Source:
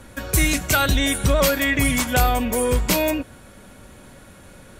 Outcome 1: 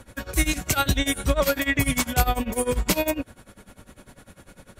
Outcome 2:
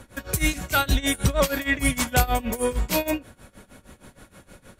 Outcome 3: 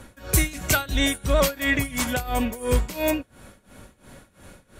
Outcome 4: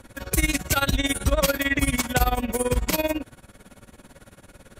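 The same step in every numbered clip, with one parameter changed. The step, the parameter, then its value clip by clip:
amplitude tremolo, speed: 10, 6.4, 2.9, 18 Hertz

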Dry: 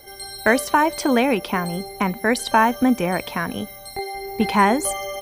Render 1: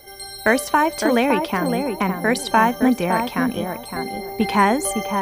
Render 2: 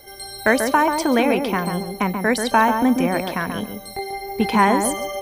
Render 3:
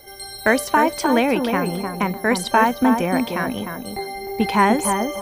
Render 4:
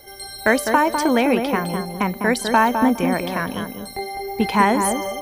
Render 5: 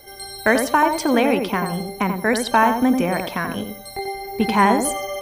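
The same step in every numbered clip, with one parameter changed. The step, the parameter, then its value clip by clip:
tape delay, delay time: 561, 138, 304, 204, 87 milliseconds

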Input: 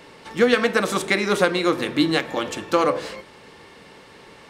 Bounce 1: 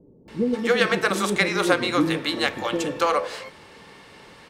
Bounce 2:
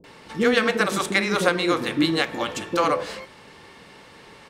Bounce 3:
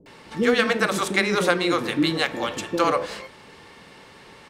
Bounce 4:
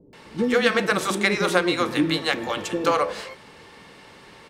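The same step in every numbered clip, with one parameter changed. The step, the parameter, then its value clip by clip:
multiband delay without the direct sound, delay time: 280, 40, 60, 130 milliseconds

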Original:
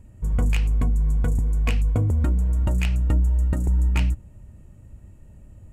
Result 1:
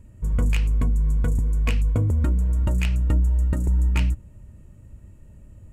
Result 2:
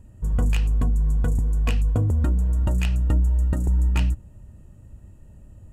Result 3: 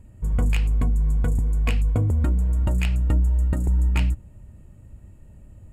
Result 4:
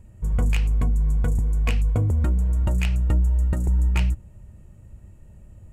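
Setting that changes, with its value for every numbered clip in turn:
notch filter, centre frequency: 760, 2,200, 5,900, 270 Hertz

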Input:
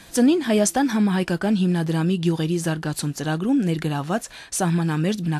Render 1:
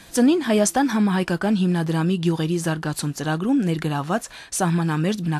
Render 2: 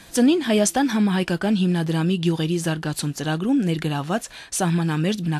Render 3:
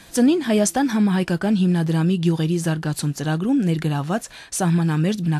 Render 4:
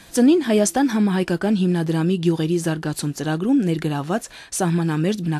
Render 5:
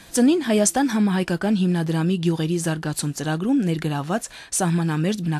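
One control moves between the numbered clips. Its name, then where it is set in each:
dynamic equaliser, frequency: 1,100, 3,100, 140, 360, 8,300 Hertz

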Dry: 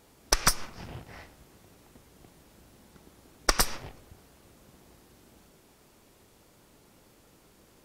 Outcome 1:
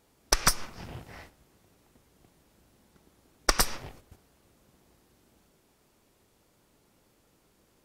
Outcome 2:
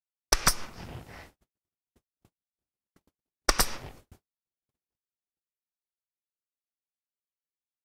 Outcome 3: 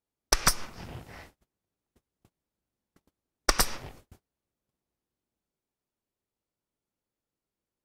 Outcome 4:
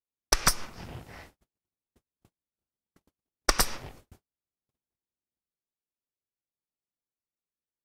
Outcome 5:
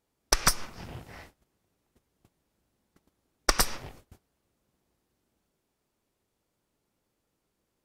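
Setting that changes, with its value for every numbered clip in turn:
noise gate, range: −7, −57, −32, −45, −20 decibels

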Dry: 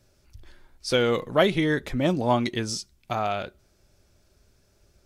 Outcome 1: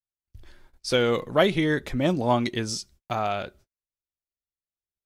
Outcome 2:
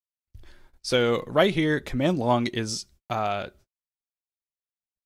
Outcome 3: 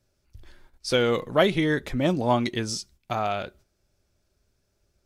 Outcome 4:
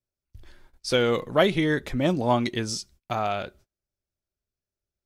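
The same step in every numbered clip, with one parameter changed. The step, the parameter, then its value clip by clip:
noise gate, range: −44, −58, −9, −29 decibels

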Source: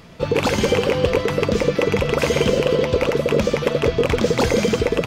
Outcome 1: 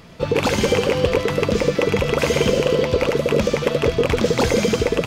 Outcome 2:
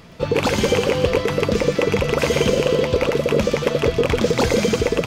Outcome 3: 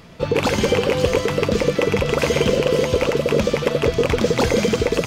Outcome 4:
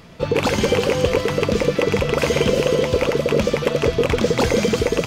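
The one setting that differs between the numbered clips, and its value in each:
delay with a high-pass on its return, delay time: 74, 120, 542, 365 milliseconds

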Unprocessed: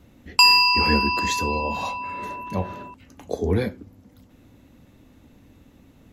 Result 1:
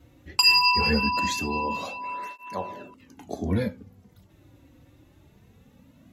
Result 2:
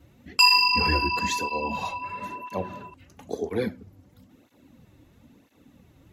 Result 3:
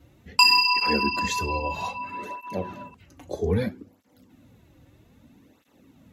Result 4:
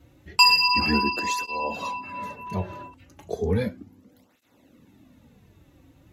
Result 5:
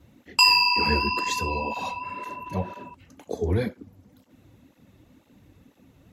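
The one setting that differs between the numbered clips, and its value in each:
through-zero flanger with one copy inverted, nulls at: 0.21, 1, 0.62, 0.34, 2 Hertz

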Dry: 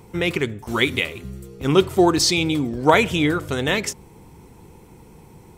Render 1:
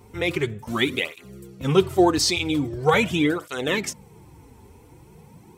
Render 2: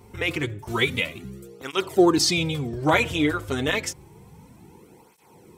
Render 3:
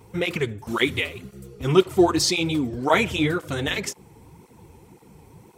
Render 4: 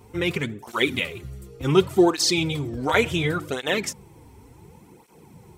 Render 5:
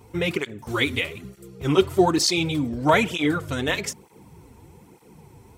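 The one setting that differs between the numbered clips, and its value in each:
through-zero flanger with one copy inverted, nulls at: 0.43, 0.29, 1.9, 0.69, 1.1 Hertz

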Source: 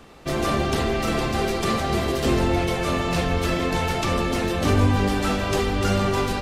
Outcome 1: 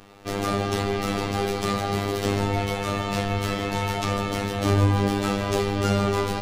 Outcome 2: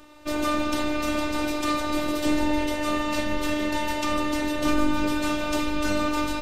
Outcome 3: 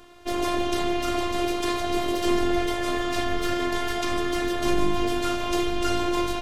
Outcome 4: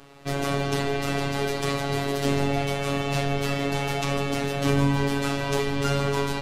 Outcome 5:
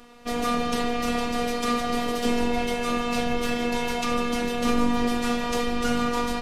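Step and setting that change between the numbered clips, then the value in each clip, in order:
phases set to zero, frequency: 100, 300, 350, 140, 240 Hertz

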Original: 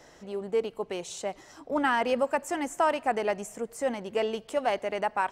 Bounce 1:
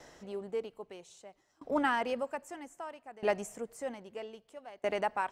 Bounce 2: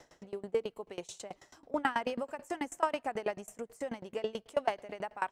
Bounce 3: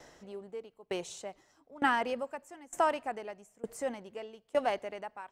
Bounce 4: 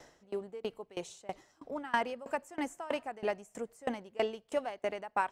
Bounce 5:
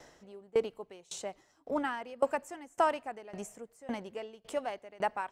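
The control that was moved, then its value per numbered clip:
tremolo with a ramp in dB, speed: 0.62, 9.2, 1.1, 3.1, 1.8 Hertz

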